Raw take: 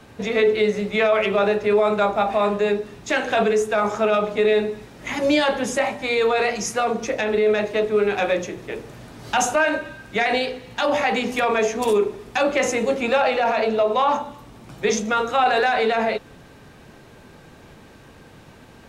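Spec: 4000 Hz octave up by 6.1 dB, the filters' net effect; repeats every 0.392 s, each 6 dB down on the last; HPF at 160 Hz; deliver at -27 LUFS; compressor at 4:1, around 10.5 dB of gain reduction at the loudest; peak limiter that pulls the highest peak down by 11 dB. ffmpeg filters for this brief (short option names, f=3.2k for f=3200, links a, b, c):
-af "highpass=160,equalizer=f=4k:t=o:g=7.5,acompressor=threshold=-27dB:ratio=4,alimiter=limit=-22.5dB:level=0:latency=1,aecho=1:1:392|784|1176|1568|1960|2352:0.501|0.251|0.125|0.0626|0.0313|0.0157,volume=3.5dB"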